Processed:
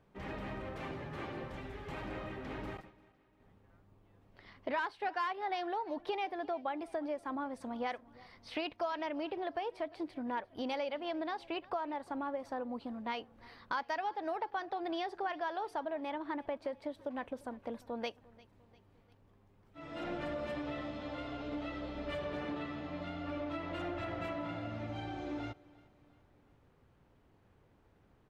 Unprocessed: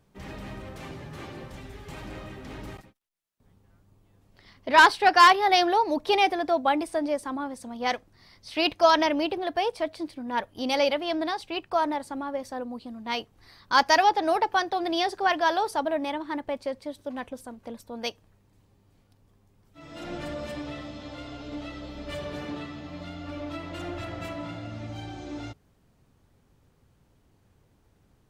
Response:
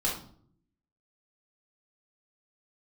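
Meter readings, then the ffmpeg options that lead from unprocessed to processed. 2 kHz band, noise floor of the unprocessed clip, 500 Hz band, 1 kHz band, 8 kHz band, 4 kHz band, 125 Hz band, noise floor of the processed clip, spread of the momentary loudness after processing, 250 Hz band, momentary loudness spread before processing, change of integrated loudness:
-15.5 dB, -65 dBFS, -10.5 dB, -14.5 dB, under -20 dB, -17.5 dB, -5.5 dB, -67 dBFS, 7 LU, -8.5 dB, 20 LU, -14.5 dB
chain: -filter_complex "[0:a]bass=f=250:g=-5,treble=f=4000:g=-15,acompressor=threshold=0.0178:ratio=6,asplit=2[s0][s1];[s1]aecho=0:1:349|698|1047:0.075|0.036|0.0173[s2];[s0][s2]amix=inputs=2:normalize=0"

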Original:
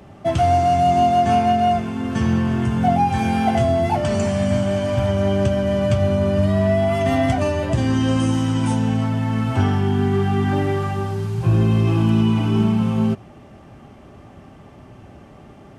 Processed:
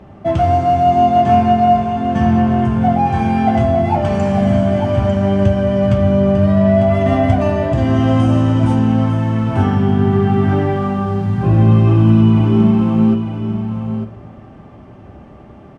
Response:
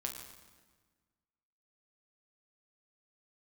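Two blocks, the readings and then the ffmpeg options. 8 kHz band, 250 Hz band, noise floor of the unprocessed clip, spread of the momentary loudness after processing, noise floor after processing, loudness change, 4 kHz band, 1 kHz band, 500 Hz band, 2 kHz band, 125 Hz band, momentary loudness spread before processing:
no reading, +6.0 dB, -44 dBFS, 7 LU, -39 dBFS, +5.0 dB, -1.5 dB, +4.5 dB, +4.0 dB, +1.0 dB, +5.5 dB, 5 LU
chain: -filter_complex "[0:a]lowpass=f=1700:p=1,aecho=1:1:899:0.376,asplit=2[s0][s1];[1:a]atrim=start_sample=2205[s2];[s1][s2]afir=irnorm=-1:irlink=0,volume=0.891[s3];[s0][s3]amix=inputs=2:normalize=0,volume=0.891"

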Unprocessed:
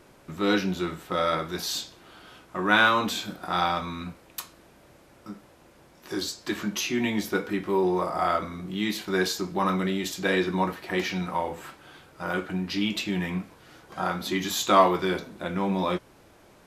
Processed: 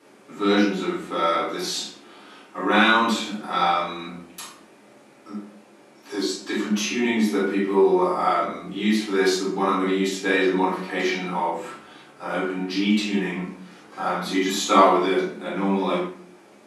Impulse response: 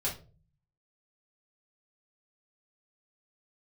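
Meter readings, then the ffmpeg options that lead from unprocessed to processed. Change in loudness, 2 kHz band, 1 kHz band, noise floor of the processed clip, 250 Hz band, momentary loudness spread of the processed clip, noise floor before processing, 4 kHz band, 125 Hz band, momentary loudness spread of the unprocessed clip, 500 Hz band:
+4.5 dB, +2.5 dB, +4.0 dB, -51 dBFS, +5.5 dB, 18 LU, -55 dBFS, +2.5 dB, +0.5 dB, 16 LU, +5.0 dB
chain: -filter_complex "[0:a]highpass=f=180:w=0.5412,highpass=f=180:w=1.3066[s0];[1:a]atrim=start_sample=2205,asetrate=22932,aresample=44100[s1];[s0][s1]afir=irnorm=-1:irlink=0,volume=0.531"

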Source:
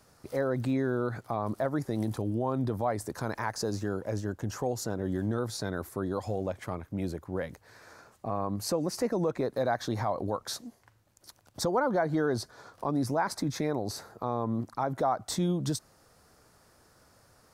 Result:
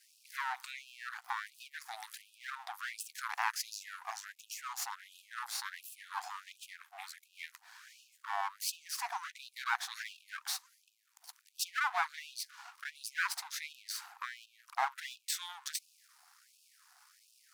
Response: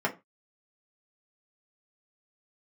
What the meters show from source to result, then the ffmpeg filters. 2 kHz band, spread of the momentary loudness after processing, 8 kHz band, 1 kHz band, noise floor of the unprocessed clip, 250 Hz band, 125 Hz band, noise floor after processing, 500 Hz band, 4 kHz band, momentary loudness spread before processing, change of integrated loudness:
+2.5 dB, 14 LU, -0.5 dB, -5.0 dB, -63 dBFS, under -40 dB, under -40 dB, -72 dBFS, -26.5 dB, 0.0 dB, 8 LU, -8.0 dB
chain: -af "aeval=exprs='max(val(0),0)':c=same,afftfilt=real='re*gte(b*sr/1024,680*pow(2500/680,0.5+0.5*sin(2*PI*1.4*pts/sr)))':imag='im*gte(b*sr/1024,680*pow(2500/680,0.5+0.5*sin(2*PI*1.4*pts/sr)))':win_size=1024:overlap=0.75,volume=1.68"

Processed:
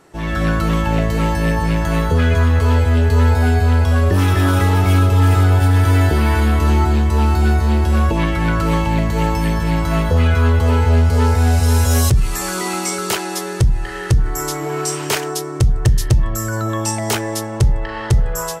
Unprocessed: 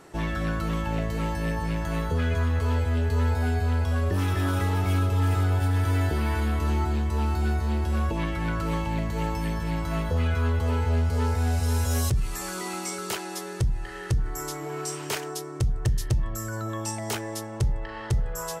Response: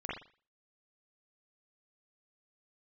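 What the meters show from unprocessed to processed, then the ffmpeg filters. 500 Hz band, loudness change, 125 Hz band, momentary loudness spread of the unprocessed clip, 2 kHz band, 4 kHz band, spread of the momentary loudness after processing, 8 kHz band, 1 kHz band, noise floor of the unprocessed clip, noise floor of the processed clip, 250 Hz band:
+10.5 dB, +10.5 dB, +10.5 dB, 8 LU, +10.5 dB, +11.0 dB, 7 LU, +11.0 dB, +10.5 dB, -37 dBFS, -26 dBFS, +10.5 dB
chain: -af "dynaudnorm=f=110:g=5:m=3.55"

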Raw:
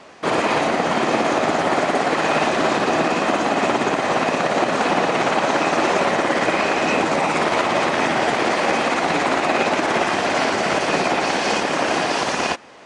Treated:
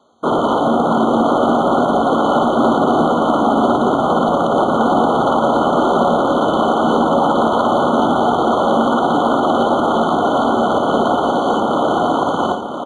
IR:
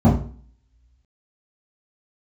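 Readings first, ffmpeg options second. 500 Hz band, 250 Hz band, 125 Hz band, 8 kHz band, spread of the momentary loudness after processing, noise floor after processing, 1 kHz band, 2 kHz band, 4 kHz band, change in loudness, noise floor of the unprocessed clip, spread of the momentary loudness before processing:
+5.0 dB, +7.5 dB, +5.5 dB, no reading, 2 LU, -18 dBFS, +5.0 dB, -7.5 dB, -2.5 dB, +4.0 dB, -24 dBFS, 1 LU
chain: -filter_complex "[0:a]highpass=55,afwtdn=0.0631,asplit=2[s0][s1];[s1]alimiter=limit=0.266:level=0:latency=1:release=11,volume=1.26[s2];[s0][s2]amix=inputs=2:normalize=0,asoftclip=type=hard:threshold=0.447,acrusher=bits=7:mode=log:mix=0:aa=0.000001,aecho=1:1:1007:0.422,asplit=2[s3][s4];[1:a]atrim=start_sample=2205[s5];[s4][s5]afir=irnorm=-1:irlink=0,volume=0.0112[s6];[s3][s6]amix=inputs=2:normalize=0,aresample=22050,aresample=44100,afftfilt=real='re*eq(mod(floor(b*sr/1024/1500),2),0)':imag='im*eq(mod(floor(b*sr/1024/1500),2),0)':win_size=1024:overlap=0.75,volume=0.794"

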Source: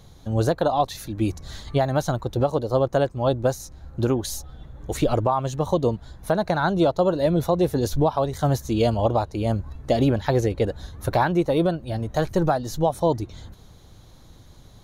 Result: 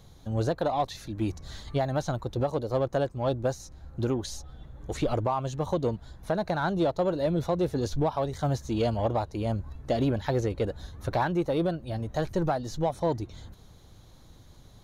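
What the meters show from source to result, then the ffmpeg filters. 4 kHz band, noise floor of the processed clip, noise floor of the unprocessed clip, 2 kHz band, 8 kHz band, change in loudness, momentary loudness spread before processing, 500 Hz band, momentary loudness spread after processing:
-6.0 dB, -53 dBFS, -49 dBFS, -6.0 dB, -8.0 dB, -6.0 dB, 8 LU, -6.0 dB, 8 LU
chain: -filter_complex "[0:a]acrossover=split=7700[s0][s1];[s1]acompressor=threshold=0.00158:ratio=4:attack=1:release=60[s2];[s0][s2]amix=inputs=2:normalize=0,asplit=2[s3][s4];[s4]asoftclip=type=tanh:threshold=0.0668,volume=0.562[s5];[s3][s5]amix=inputs=2:normalize=0,volume=0.398"

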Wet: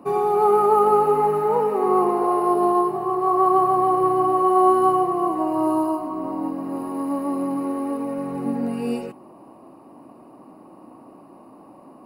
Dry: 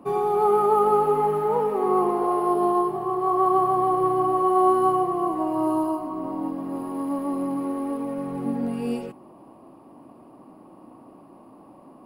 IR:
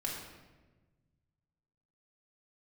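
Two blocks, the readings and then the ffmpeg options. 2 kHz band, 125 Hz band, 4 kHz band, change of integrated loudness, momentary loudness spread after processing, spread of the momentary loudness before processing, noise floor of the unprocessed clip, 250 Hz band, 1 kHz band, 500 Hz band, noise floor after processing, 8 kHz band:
+3.0 dB, +0.5 dB, no reading, +2.5 dB, 11 LU, 11 LU, -49 dBFS, +2.0 dB, +3.0 dB, +2.5 dB, -47 dBFS, +3.0 dB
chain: -af "asuperstop=centerf=3300:order=20:qfactor=7,lowshelf=f=110:g=-7,volume=1.41"

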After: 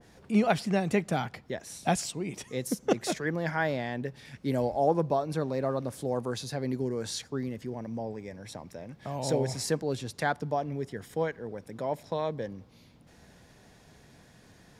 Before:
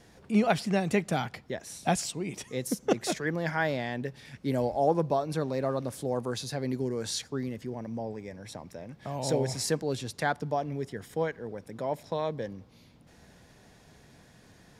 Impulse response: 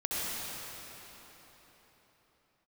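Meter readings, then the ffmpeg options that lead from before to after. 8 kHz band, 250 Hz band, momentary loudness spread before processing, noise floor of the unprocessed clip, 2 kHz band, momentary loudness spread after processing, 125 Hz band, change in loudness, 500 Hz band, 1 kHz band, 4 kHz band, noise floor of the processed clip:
-1.5 dB, 0.0 dB, 12 LU, -57 dBFS, -0.5 dB, 12 LU, 0.0 dB, 0.0 dB, 0.0 dB, 0.0 dB, -1.5 dB, -57 dBFS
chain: -af "adynamicequalizer=threshold=0.00562:dfrequency=2000:dqfactor=0.7:tfrequency=2000:tqfactor=0.7:attack=5:release=100:ratio=0.375:range=1.5:mode=cutabove:tftype=highshelf"

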